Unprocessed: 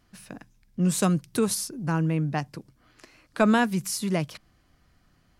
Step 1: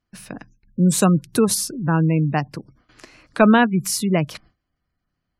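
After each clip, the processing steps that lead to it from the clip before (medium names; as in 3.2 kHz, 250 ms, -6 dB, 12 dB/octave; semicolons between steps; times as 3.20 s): gate with hold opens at -50 dBFS; spectral gate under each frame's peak -30 dB strong; trim +7 dB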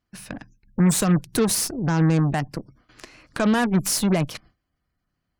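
peak limiter -11.5 dBFS, peak gain reduction 10.5 dB; Chebyshev shaper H 8 -19 dB, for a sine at -11.5 dBFS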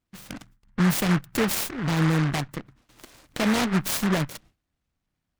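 delay time shaken by noise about 1.3 kHz, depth 0.21 ms; trim -3 dB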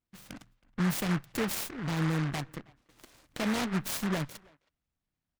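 speakerphone echo 320 ms, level -24 dB; trim -7.5 dB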